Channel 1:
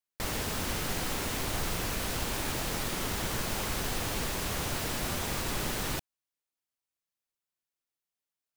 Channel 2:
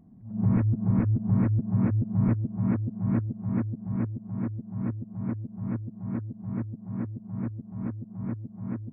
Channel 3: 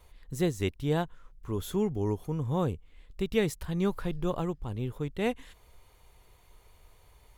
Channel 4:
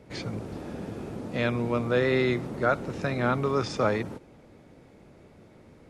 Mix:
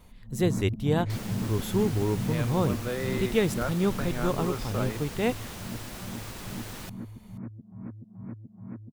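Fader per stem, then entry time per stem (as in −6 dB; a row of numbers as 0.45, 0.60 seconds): −8.0, −7.5, +2.5, −8.5 decibels; 0.90, 0.00, 0.00, 0.95 seconds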